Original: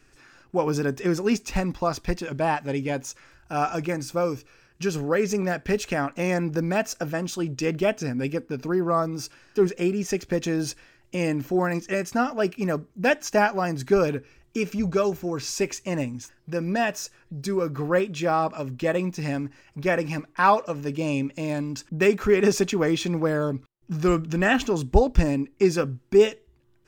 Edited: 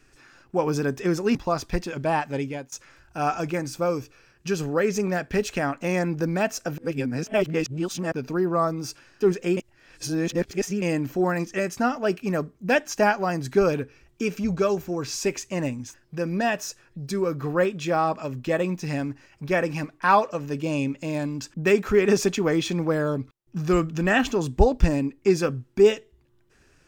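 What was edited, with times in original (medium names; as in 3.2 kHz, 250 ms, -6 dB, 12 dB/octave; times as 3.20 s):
1.35–1.70 s: delete
2.72–3.07 s: fade out, to -20 dB
7.13–8.47 s: reverse
9.92–11.17 s: reverse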